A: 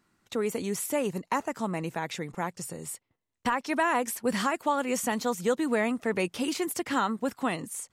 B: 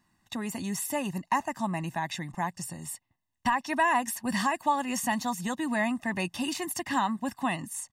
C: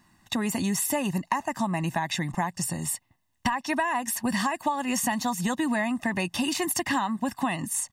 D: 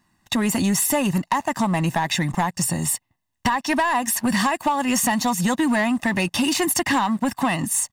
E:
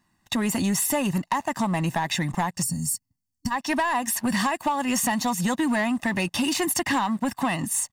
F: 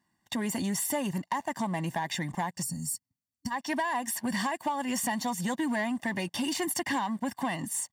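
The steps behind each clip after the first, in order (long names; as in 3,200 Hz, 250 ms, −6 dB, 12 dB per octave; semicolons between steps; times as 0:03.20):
comb filter 1.1 ms, depth 93%; level −2.5 dB
downward compressor 10 to 1, threshold −32 dBFS, peak gain reduction 12.5 dB; level +9 dB
leveller curve on the samples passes 2
gain on a spectral selection 0:02.63–0:03.51, 290–4,300 Hz −18 dB; level −3.5 dB
notch comb filter 1,300 Hz; level −5.5 dB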